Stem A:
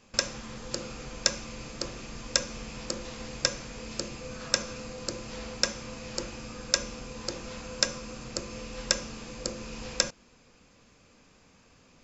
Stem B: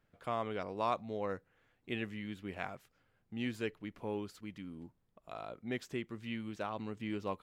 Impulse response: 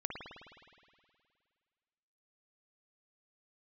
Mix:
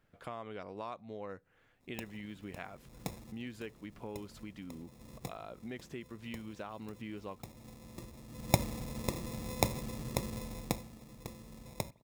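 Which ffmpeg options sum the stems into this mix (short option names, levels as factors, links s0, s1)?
-filter_complex "[0:a]acrusher=samples=29:mix=1:aa=0.000001,highpass=f=86:p=1,bass=f=250:g=12,treble=f=4000:g=9,adelay=1800,volume=0.501,afade=t=in:st=8.27:d=0.27:silence=0.281838,afade=t=out:st=10.29:d=0.56:silence=0.281838,asplit=2[s0][s1];[s1]volume=0.0708[s2];[1:a]acompressor=threshold=0.00501:ratio=3,volume=1.41,asplit=2[s3][s4];[s4]apad=whole_len=609978[s5];[s0][s5]sidechaincompress=threshold=0.00178:ratio=3:attack=9.1:release=290[s6];[2:a]atrim=start_sample=2205[s7];[s2][s7]afir=irnorm=-1:irlink=0[s8];[s6][s3][s8]amix=inputs=3:normalize=0"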